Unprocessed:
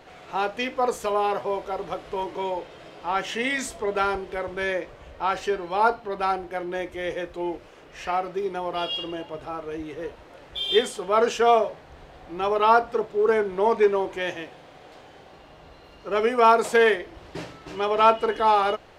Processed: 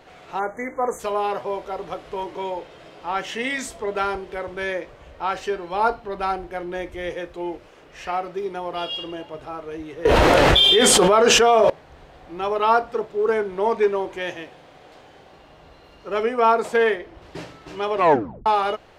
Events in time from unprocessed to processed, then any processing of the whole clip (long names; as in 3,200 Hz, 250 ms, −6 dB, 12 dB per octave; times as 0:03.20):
0:00.39–0:00.99: time-frequency box erased 2,300–6,000 Hz
0:05.71–0:07.10: low-shelf EQ 81 Hz +11.5 dB
0:10.05–0:11.70: envelope flattener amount 100%
0:16.23–0:17.22: high-shelf EQ 3,300 Hz −7 dB
0:17.94: tape stop 0.52 s